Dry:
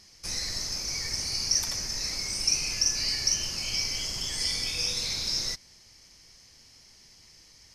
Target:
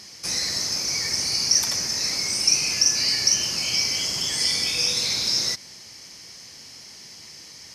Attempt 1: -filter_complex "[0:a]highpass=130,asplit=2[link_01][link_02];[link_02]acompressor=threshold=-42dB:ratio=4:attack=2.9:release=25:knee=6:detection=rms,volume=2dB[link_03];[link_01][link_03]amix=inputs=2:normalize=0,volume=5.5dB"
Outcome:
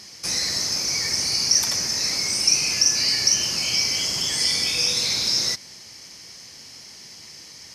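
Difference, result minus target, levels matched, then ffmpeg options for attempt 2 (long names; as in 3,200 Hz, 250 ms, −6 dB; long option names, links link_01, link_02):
downward compressor: peak gain reduction −6.5 dB
-filter_complex "[0:a]highpass=130,asplit=2[link_01][link_02];[link_02]acompressor=threshold=-50.5dB:ratio=4:attack=2.9:release=25:knee=6:detection=rms,volume=2dB[link_03];[link_01][link_03]amix=inputs=2:normalize=0,volume=5.5dB"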